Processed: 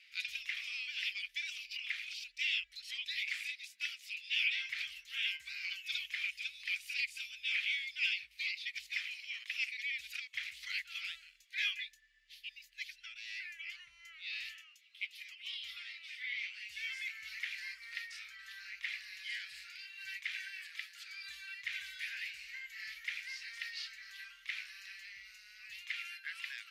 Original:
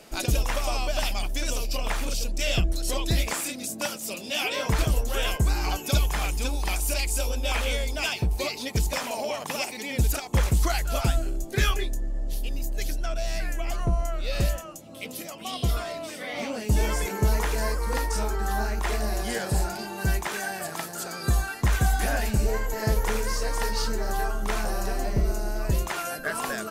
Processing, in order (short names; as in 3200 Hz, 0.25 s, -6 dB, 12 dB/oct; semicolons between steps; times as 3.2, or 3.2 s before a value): elliptic high-pass 2100 Hz, stop band 60 dB; air absorption 360 m; gain +3.5 dB